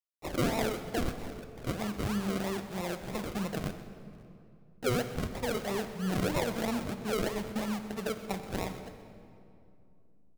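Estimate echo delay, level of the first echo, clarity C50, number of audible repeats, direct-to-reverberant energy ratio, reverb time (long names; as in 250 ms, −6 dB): 127 ms, −16.5 dB, 9.0 dB, 1, 8.0 dB, 2.6 s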